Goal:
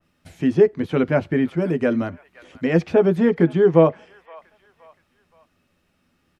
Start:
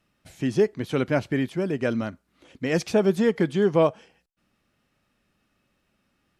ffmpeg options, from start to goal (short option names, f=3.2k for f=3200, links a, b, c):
-filter_complex "[0:a]asettb=1/sr,asplit=3[a][b][c];[a]atrim=end=1.624[d];[b]atrim=start=1.62:end=2.09,asetpts=PTS-STARTPTS,afade=t=in:d=0.004:c=qsin,afade=t=out:st=0.466:d=0.004:c=qsin,highshelf=f=9.4k:g=10[e];[c]atrim=start=2.086[f];[d][e]acrossfade=d=0.004:c1=hsin:c2=qsin[g];[g][f]acrossfade=d=0.004:c1=qsin:c2=hsin,acrossover=split=670|3100[h][i][j];[h]asplit=2[k][l];[l]adelay=12,volume=-2.5dB[m];[k][m]amix=inputs=2:normalize=0[n];[i]aecho=1:1:521|1042|1563:0.126|0.0529|0.0222[o];[j]acompressor=threshold=-59dB:ratio=4[p];[n][o][p]amix=inputs=3:normalize=0,adynamicequalizer=threshold=0.0112:dfrequency=2300:dqfactor=0.7:tfrequency=2300:tqfactor=0.7:attack=5:release=100:ratio=0.375:range=2:mode=cutabove:tftype=highshelf,volume=3.5dB"